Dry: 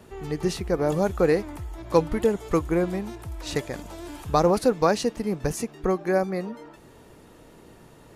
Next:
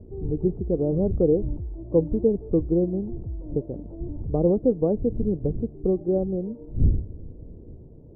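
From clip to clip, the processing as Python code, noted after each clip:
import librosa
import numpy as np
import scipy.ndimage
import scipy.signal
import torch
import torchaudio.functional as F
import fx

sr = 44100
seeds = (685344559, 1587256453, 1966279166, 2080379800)

y = fx.dmg_wind(x, sr, seeds[0], corner_hz=88.0, level_db=-34.0)
y = scipy.signal.sosfilt(scipy.signal.cheby2(4, 80, 2900.0, 'lowpass', fs=sr, output='sos'), y)
y = F.gain(torch.from_numpy(y), 2.5).numpy()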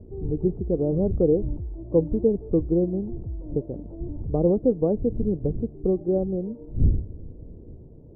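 y = x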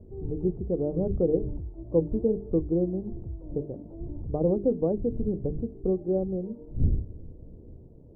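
y = fx.hum_notches(x, sr, base_hz=50, count=9)
y = F.gain(torch.from_numpy(y), -3.0).numpy()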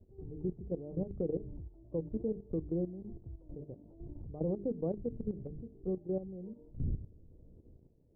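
y = fx.dynamic_eq(x, sr, hz=150.0, q=1.0, threshold_db=-39.0, ratio=4.0, max_db=4)
y = fx.level_steps(y, sr, step_db=12)
y = F.gain(torch.from_numpy(y), -8.0).numpy()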